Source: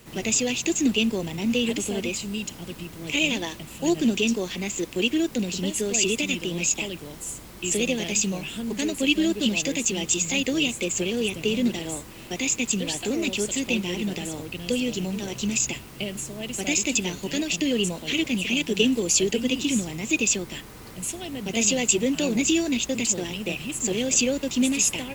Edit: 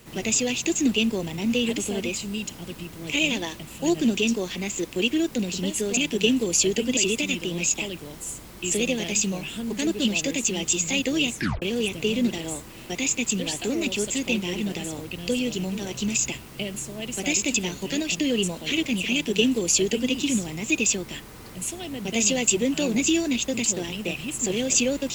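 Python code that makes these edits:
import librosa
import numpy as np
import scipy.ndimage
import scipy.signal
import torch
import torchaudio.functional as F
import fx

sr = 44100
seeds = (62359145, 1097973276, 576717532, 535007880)

y = fx.edit(x, sr, fx.cut(start_s=8.87, length_s=0.41),
    fx.tape_stop(start_s=10.75, length_s=0.28),
    fx.duplicate(start_s=18.53, length_s=1.0, to_s=5.97), tone=tone)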